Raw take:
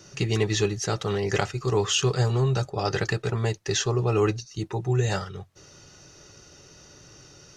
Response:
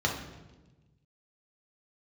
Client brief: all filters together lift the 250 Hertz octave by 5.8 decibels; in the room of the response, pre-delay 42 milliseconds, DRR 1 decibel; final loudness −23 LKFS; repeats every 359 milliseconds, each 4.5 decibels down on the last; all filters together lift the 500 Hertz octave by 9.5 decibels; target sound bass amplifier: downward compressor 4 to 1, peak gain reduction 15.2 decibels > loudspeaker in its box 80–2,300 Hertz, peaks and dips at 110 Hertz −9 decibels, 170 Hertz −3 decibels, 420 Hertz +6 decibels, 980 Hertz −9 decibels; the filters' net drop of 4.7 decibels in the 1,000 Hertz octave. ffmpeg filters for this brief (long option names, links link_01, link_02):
-filter_complex "[0:a]equalizer=frequency=250:width_type=o:gain=6,equalizer=frequency=500:width_type=o:gain=5,equalizer=frequency=1000:width_type=o:gain=-6,aecho=1:1:359|718|1077|1436|1795|2154|2513|2872|3231:0.596|0.357|0.214|0.129|0.0772|0.0463|0.0278|0.0167|0.01,asplit=2[link_01][link_02];[1:a]atrim=start_sample=2205,adelay=42[link_03];[link_02][link_03]afir=irnorm=-1:irlink=0,volume=-11dB[link_04];[link_01][link_04]amix=inputs=2:normalize=0,acompressor=threshold=-27dB:ratio=4,highpass=frequency=80:width=0.5412,highpass=frequency=80:width=1.3066,equalizer=frequency=110:width_type=q:width=4:gain=-9,equalizer=frequency=170:width_type=q:width=4:gain=-3,equalizer=frequency=420:width_type=q:width=4:gain=6,equalizer=frequency=980:width_type=q:width=4:gain=-9,lowpass=frequency=2300:width=0.5412,lowpass=frequency=2300:width=1.3066,volume=5.5dB"